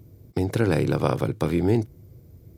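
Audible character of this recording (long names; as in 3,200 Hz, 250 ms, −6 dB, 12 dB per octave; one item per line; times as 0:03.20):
background noise floor −51 dBFS
spectral slope −6.5 dB per octave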